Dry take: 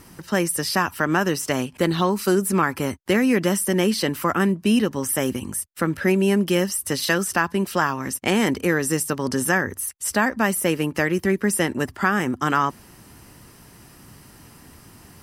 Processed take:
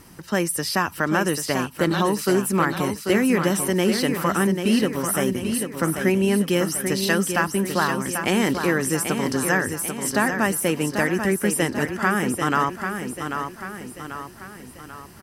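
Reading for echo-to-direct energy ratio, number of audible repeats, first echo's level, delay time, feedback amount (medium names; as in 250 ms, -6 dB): -6.0 dB, 5, -7.0 dB, 790 ms, 49%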